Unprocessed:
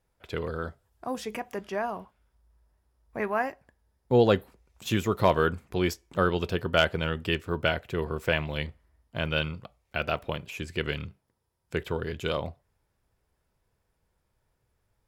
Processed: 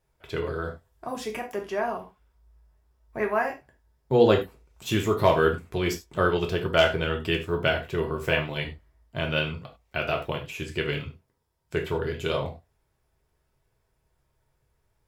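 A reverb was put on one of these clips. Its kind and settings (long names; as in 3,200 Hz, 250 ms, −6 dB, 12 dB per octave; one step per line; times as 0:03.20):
reverb whose tail is shaped and stops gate 120 ms falling, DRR 1.5 dB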